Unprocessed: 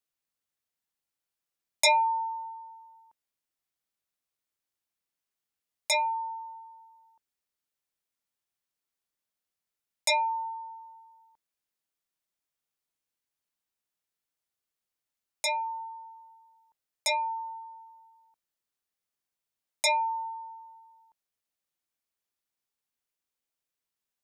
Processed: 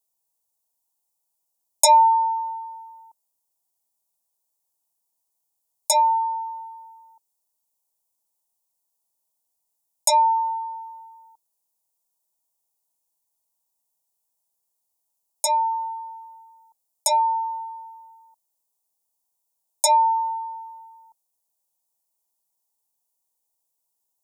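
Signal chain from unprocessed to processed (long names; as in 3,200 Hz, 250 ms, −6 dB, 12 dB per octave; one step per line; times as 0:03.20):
drawn EQ curve 340 Hz 0 dB, 940 Hz +11 dB, 1,500 Hz −18 dB, 7,400 Hz +11 dB, 11,000 Hz +13 dB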